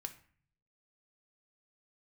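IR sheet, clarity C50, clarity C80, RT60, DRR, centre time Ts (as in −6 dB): 13.0 dB, 17.5 dB, 0.45 s, 6.0 dB, 7 ms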